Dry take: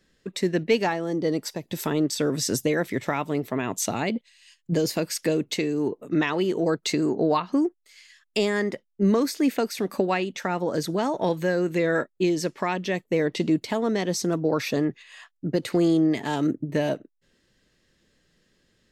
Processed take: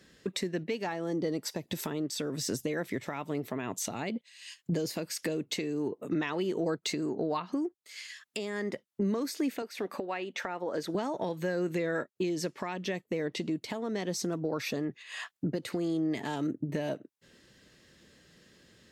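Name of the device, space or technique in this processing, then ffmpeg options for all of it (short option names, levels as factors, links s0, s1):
podcast mastering chain: -filter_complex "[0:a]asettb=1/sr,asplit=3[s0][s1][s2];[s0]atrim=end=9.624[s3];[s1]atrim=start=9.62:end=10.95,asetpts=PTS-STARTPTS,afade=t=in:d=0.004:c=qsin,afade=t=out:st=1.326:d=0.004:c=qsin,bass=f=250:g=-13,treble=f=4000:g=-9[s4];[s2]atrim=start=10.946[s5];[s3][s4]acrossfade=d=0.004:c1=hsin:c2=qsin[s6];[s6][s5]acrossfade=d=0.004:c1=qsin:c2=hsin,highpass=65,deesser=0.5,acompressor=threshold=0.0112:ratio=3,alimiter=level_in=1.68:limit=0.0631:level=0:latency=1:release=433,volume=0.596,volume=2.37" -ar 48000 -c:a libmp3lame -b:a 112k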